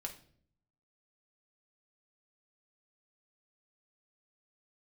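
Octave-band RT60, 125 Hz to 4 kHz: 1.0 s, 0.90 s, 0.70 s, 0.45 s, 0.45 s, 0.45 s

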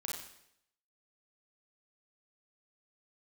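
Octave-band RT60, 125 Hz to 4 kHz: 0.70 s, 0.75 s, 0.75 s, 0.70 s, 0.75 s, 0.70 s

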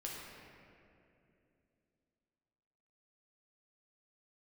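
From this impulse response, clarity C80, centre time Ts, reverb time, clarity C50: 0.5 dB, 131 ms, 2.7 s, -1.0 dB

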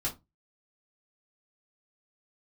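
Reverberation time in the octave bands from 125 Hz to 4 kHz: 0.40 s, 0.30 s, 0.20 s, 0.20 s, 0.15 s, 0.15 s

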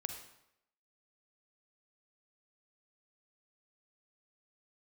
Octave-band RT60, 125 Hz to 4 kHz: 0.75 s, 0.75 s, 0.80 s, 0.80 s, 0.75 s, 0.65 s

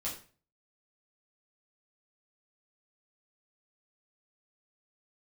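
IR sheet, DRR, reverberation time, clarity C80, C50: -7.0 dB, 0.40 s, 12.0 dB, 7.5 dB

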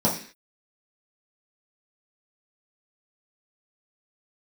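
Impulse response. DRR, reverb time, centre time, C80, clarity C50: -6.0 dB, 0.45 s, 25 ms, 12.5 dB, 8.0 dB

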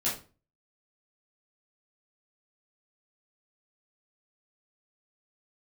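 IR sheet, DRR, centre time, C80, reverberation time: -9.0 dB, 31 ms, 13.5 dB, 0.35 s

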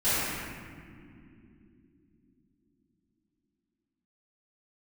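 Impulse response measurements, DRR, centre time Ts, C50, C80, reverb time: -20.0 dB, 168 ms, -6.0 dB, -3.0 dB, no single decay rate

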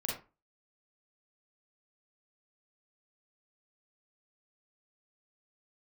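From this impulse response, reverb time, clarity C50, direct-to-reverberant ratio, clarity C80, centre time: 0.30 s, 2.5 dB, -3.5 dB, 10.0 dB, 39 ms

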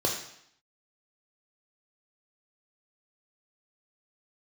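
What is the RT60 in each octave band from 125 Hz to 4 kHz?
0.70 s, 0.75 s, 0.65 s, 0.75 s, 0.75 s, 0.70 s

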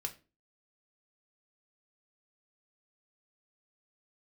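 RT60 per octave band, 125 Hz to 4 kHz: 0.40 s, 0.45 s, 0.35 s, 0.25 s, 0.30 s, 0.25 s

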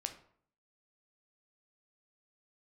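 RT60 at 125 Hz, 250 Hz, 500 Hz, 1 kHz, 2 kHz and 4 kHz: 0.70 s, 0.70 s, 0.60 s, 0.60 s, 0.50 s, 0.35 s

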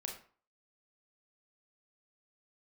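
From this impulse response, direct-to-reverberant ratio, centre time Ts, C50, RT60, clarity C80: 1.0 dB, 25 ms, 7.0 dB, 0.45 s, 11.5 dB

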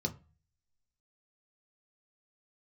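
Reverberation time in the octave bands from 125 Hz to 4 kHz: 0.60 s, 0.40 s, 0.30 s, 0.35 s, 0.30 s, 0.25 s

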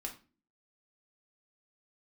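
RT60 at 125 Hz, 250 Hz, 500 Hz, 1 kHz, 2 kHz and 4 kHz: 0.55 s, 0.60 s, 0.35 s, 0.30 s, 0.30 s, 0.30 s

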